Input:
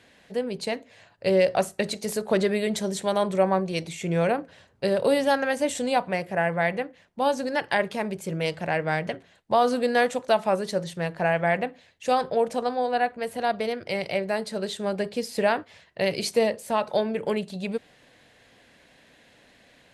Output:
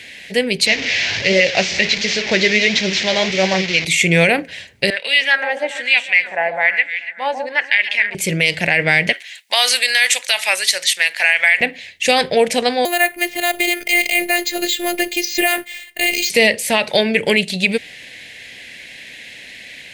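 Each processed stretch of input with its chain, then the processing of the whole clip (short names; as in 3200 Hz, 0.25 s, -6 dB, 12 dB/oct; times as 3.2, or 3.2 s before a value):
0.66–3.85 delta modulation 32 kbps, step -28.5 dBFS + HPF 46 Hz + flange 1.4 Hz, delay 3.2 ms, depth 9.9 ms, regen +65%
4.9–8.15 HPF 170 Hz + echo with dull and thin repeats by turns 0.143 s, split 1300 Hz, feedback 61%, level -9 dB + wah 1.1 Hz 760–2800 Hz, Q 2.3
9.13–11.61 HPF 1000 Hz + tilt +2 dB/oct
12.85–16.3 careless resampling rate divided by 4×, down filtered, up hold + robotiser 351 Hz
whole clip: resonant high shelf 1600 Hz +9.5 dB, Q 3; maximiser +11 dB; gain -1 dB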